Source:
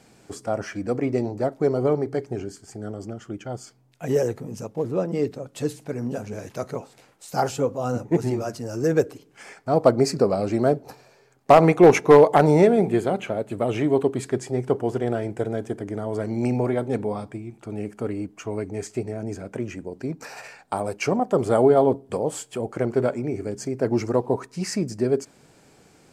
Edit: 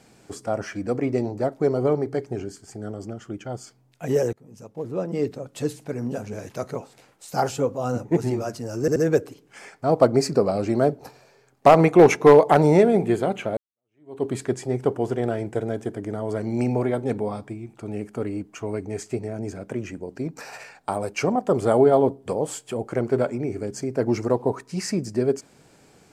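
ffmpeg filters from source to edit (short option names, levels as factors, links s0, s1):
-filter_complex "[0:a]asplit=5[s0][s1][s2][s3][s4];[s0]atrim=end=4.33,asetpts=PTS-STARTPTS,afade=t=out:st=4.326:d=0.004:c=hsin:silence=0.0668344[s5];[s1]atrim=start=4.33:end=8.882,asetpts=PTS-STARTPTS,afade=t=in:d=0.96:silence=0.0668344[s6];[s2]atrim=start=8.798:end=8.882[s7];[s3]atrim=start=8.798:end=13.41,asetpts=PTS-STARTPTS,afade=t=out:st=4.608:d=0.004:c=hsin[s8];[s4]atrim=start=13.41,asetpts=PTS-STARTPTS,afade=t=in:d=0.68:c=exp[s9];[s5][s6]concat=n=2:v=0:a=1[s10];[s10][s7]acrossfade=d=0.004:c1=hsin:c2=hsin[s11];[s8][s9]concat=n=2:v=0:a=1[s12];[s11][s12]acrossfade=d=0.004:c1=hsin:c2=hsin"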